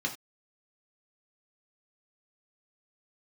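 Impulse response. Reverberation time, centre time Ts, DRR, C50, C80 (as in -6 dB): no single decay rate, 13 ms, 0.0 dB, 11.5 dB, 17.0 dB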